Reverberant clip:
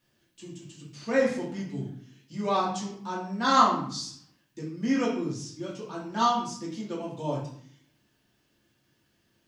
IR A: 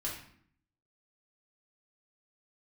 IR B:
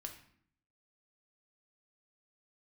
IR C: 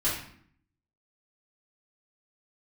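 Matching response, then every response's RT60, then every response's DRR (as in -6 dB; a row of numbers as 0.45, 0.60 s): A; 0.60, 0.60, 0.60 s; -5.5, 3.0, -10.5 dB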